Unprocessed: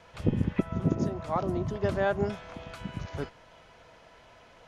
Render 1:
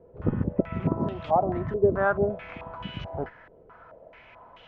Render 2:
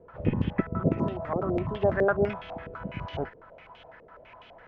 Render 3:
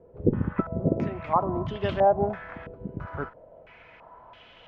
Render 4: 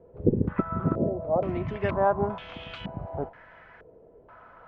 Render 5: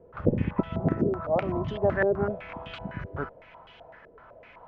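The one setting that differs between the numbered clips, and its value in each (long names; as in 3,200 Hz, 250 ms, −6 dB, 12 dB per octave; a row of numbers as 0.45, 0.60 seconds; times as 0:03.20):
low-pass on a step sequencer, speed: 4.6, 12, 3, 2.1, 7.9 Hertz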